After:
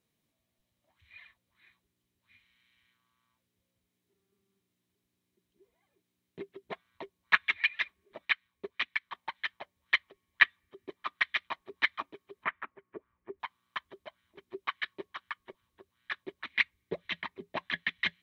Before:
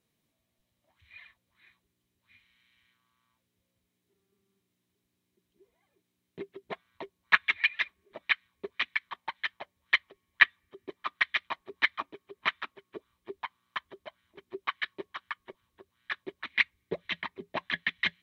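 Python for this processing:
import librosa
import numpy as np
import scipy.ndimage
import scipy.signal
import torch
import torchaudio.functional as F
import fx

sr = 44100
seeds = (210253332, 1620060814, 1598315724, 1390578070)

y = fx.transient(x, sr, attack_db=0, sustain_db=-4, at=(8.25, 9.11))
y = fx.lowpass(y, sr, hz=2100.0, slope=24, at=(12.44, 13.4))
y = y * 10.0 ** (-2.0 / 20.0)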